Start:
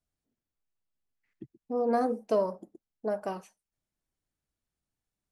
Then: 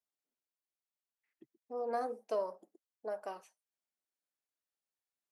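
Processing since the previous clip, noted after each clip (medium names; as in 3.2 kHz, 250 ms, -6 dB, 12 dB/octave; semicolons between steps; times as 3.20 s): high-pass 450 Hz 12 dB/octave; trim -6.5 dB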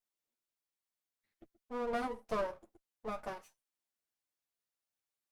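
comb filter that takes the minimum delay 8.8 ms; trim +1.5 dB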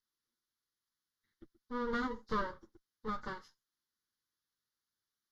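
knee-point frequency compression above 3.6 kHz 1.5:1; static phaser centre 2.5 kHz, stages 6; trim +5.5 dB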